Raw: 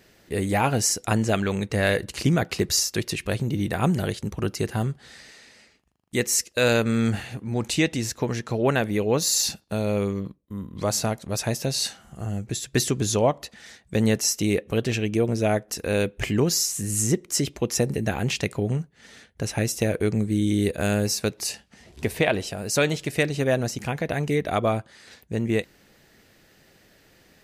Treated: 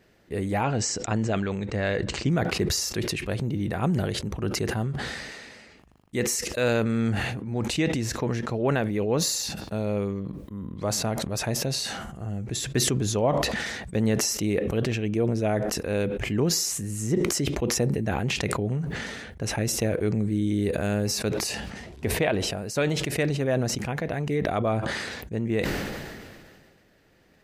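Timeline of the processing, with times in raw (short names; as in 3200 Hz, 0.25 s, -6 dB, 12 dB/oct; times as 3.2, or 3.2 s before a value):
0.63–2.31 elliptic low-pass 8000 Hz
whole clip: high shelf 3100 Hz -9.5 dB; sustainer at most 30 dB/s; gain -3 dB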